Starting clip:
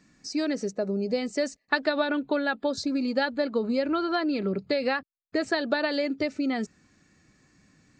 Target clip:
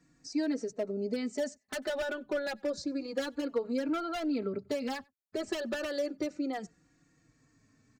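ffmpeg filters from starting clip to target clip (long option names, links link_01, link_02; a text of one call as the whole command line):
ffmpeg -i in.wav -filter_complex "[0:a]equalizer=frequency=3100:width=0.99:gain=-6,acrossover=split=500[link_01][link_02];[link_02]aeval=exprs='0.0447*(abs(mod(val(0)/0.0447+3,4)-2)-1)':channel_layout=same[link_03];[link_01][link_03]amix=inputs=2:normalize=0,asplit=2[link_04][link_05];[link_05]adelay=93.29,volume=-29dB,highshelf=frequency=4000:gain=-2.1[link_06];[link_04][link_06]amix=inputs=2:normalize=0,asplit=2[link_07][link_08];[link_08]adelay=3.8,afreqshift=-0.29[link_09];[link_07][link_09]amix=inputs=2:normalize=1,volume=-2dB" out.wav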